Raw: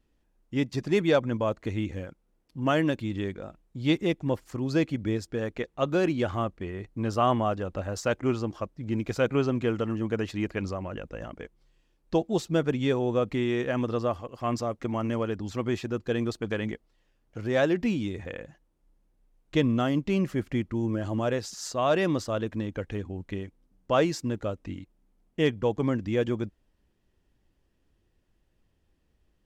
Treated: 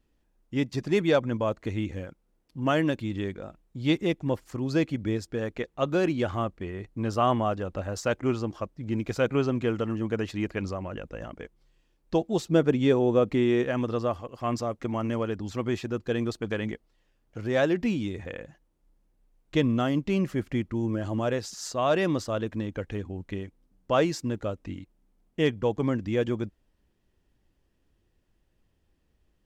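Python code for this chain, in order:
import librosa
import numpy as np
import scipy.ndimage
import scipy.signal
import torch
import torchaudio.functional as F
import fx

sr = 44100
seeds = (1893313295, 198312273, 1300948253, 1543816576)

y = fx.peak_eq(x, sr, hz=350.0, db=4.5, octaves=2.3, at=(12.48, 13.64))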